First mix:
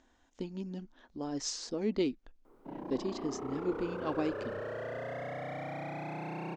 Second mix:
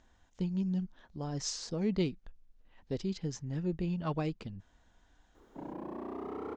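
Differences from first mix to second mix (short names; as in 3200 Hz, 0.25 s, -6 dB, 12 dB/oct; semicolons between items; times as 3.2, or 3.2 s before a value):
speech: add resonant low shelf 210 Hz +6.5 dB, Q 3; background: entry +2.90 s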